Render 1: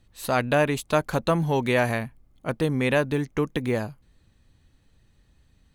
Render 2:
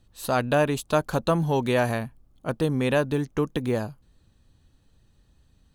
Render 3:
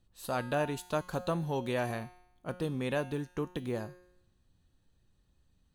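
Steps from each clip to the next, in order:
peaking EQ 2.1 kHz -8 dB 0.45 oct
feedback comb 180 Hz, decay 0.79 s, harmonics all, mix 70%

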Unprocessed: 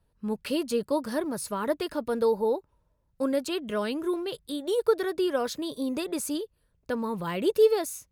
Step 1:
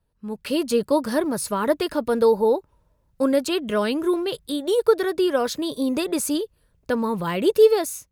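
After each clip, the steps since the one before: level rider gain up to 9.5 dB; trim -2.5 dB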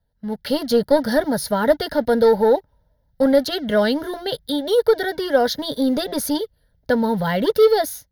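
peaking EQ 310 Hz +11 dB 0.62 oct; waveshaping leveller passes 1; static phaser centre 1.7 kHz, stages 8; trim +3.5 dB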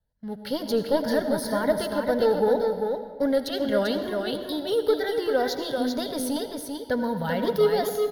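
wow and flutter 82 cents; delay 392 ms -5 dB; reverberation RT60 1.6 s, pre-delay 72 ms, DRR 9.5 dB; trim -7.5 dB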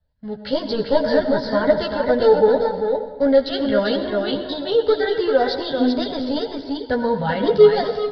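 chorus voices 6, 0.31 Hz, delay 13 ms, depth 1.9 ms; resampled via 11.025 kHz; trim +8.5 dB

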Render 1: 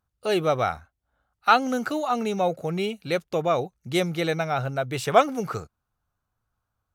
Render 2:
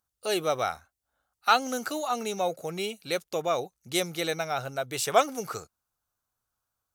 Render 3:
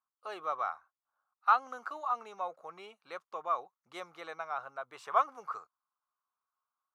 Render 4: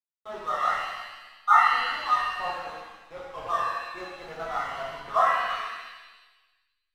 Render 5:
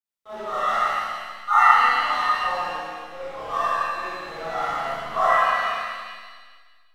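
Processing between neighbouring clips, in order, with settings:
tone controls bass -8 dB, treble +11 dB; trim -4 dB
band-pass filter 1.1 kHz, Q 5.5; trim +4 dB
spectral contrast enhancement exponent 1.6; hysteresis with a dead band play -37 dBFS; pitch-shifted reverb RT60 1.2 s, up +7 st, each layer -8 dB, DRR -8 dB
Schroeder reverb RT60 1.5 s, combs from 28 ms, DRR -10 dB; trim -5 dB

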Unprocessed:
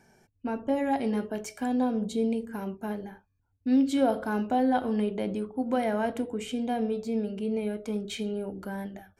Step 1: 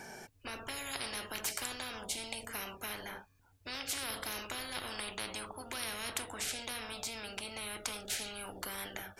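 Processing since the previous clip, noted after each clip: bass shelf 280 Hz -12 dB; spectrum-flattening compressor 10:1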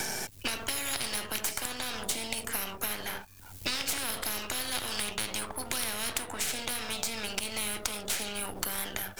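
partial rectifier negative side -12 dB; treble shelf 6.3 kHz +6 dB; three bands compressed up and down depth 100%; trim +7.5 dB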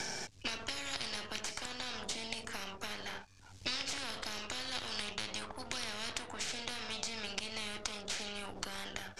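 four-pole ladder low-pass 7.5 kHz, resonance 25%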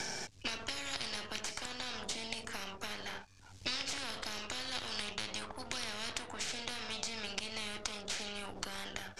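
no audible change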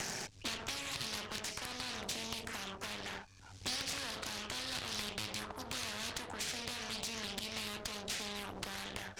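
valve stage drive 34 dB, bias 0.55; loudspeaker Doppler distortion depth 0.71 ms; trim +5 dB

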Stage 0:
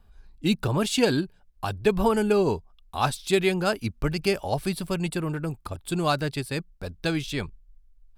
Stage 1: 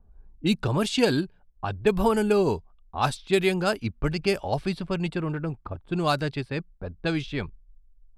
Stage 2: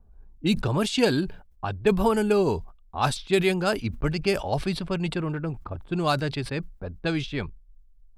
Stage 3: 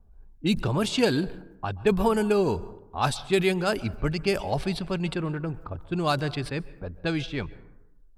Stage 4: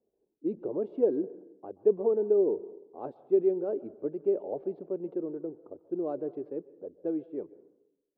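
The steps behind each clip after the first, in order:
level-controlled noise filter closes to 660 Hz, open at -19 dBFS
decay stretcher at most 120 dB/s
plate-style reverb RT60 0.93 s, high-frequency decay 0.4×, pre-delay 115 ms, DRR 18.5 dB; trim -1 dB
Butterworth band-pass 410 Hz, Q 1.7

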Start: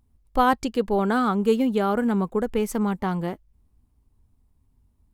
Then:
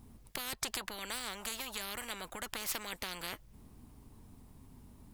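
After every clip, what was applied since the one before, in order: compression, threshold -25 dBFS, peak gain reduction 10.5 dB; spectrum-flattening compressor 10:1; trim -1.5 dB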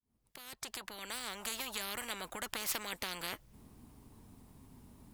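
fade-in on the opening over 1.59 s; bass shelf 67 Hz -8 dB; trim +1 dB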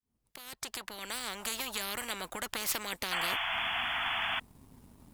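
painted sound noise, 3.11–4.40 s, 640–3500 Hz -37 dBFS; waveshaping leveller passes 1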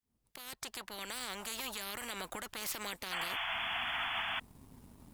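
peak limiter -28 dBFS, peak gain reduction 11 dB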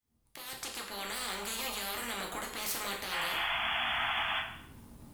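plate-style reverb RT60 0.7 s, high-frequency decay 0.9×, DRR -0.5 dB; trim +1 dB

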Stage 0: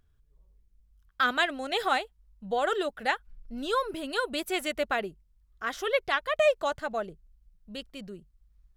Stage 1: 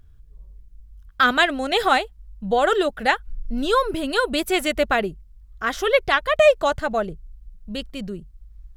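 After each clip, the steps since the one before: bass shelf 160 Hz +10.5 dB; trim +8 dB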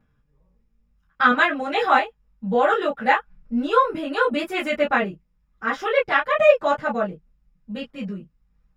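reverberation, pre-delay 3 ms, DRR -11.5 dB; trim -14.5 dB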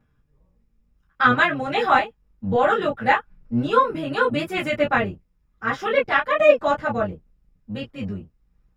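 octave divider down 1 oct, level -5 dB

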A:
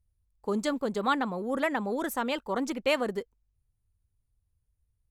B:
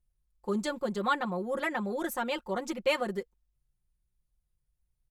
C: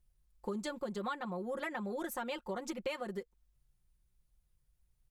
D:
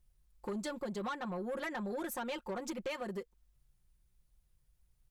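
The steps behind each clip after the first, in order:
comb 5.6 ms, depth 84%; trim -4 dB
compression 5:1, threshold -41 dBFS, peak gain reduction 17 dB; trim +4 dB
saturation -35 dBFS, distortion -14 dB; trim +2.5 dB

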